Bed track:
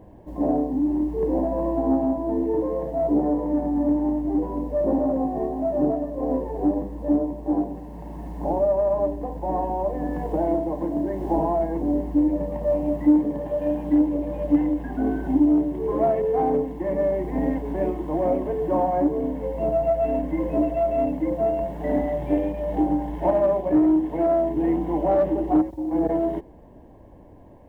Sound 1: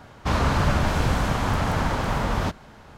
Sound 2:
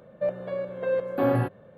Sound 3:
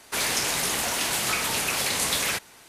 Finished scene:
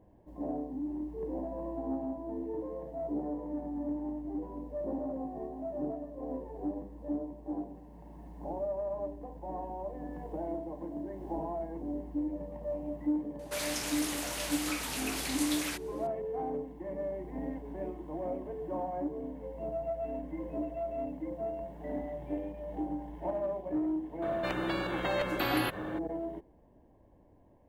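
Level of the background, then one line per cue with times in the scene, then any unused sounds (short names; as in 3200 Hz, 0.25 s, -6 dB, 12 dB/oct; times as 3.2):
bed track -14 dB
13.39 add 3 -11 dB
24.22 add 2 -7.5 dB + spectral compressor 4:1
not used: 1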